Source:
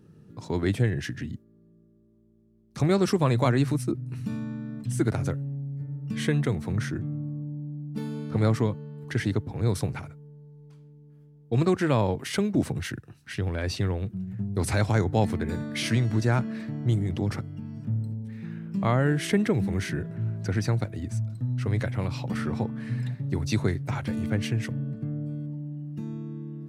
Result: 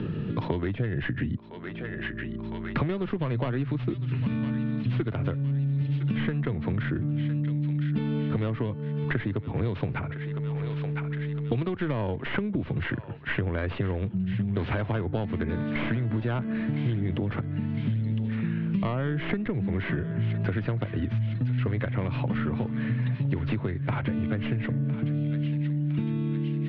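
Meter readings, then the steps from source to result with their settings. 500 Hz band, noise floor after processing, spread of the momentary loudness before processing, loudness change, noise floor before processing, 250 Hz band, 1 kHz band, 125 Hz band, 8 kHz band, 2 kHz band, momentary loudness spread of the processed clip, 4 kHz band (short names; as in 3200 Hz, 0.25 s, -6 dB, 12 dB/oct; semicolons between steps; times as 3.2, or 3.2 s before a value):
-3.0 dB, -36 dBFS, 12 LU, -1.0 dB, -57 dBFS, 0.0 dB, -3.5 dB, 0.0 dB, under -35 dB, +0.5 dB, 4 LU, -5.5 dB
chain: tracing distortion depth 0.37 ms; steep low-pass 3300 Hz 36 dB/oct; notch 790 Hz, Q 12; compressor, threshold -27 dBFS, peak gain reduction 10.5 dB; on a send: thinning echo 1.009 s, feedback 45%, high-pass 1200 Hz, level -14 dB; on the sum: three-band squash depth 100%; gain +3 dB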